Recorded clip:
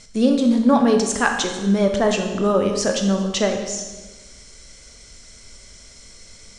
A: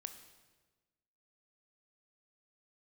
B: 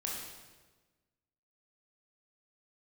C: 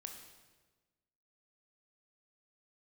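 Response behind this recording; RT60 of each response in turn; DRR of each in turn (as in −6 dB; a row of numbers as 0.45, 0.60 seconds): C; 1.3, 1.3, 1.3 seconds; 8.0, −3.0, 3.5 decibels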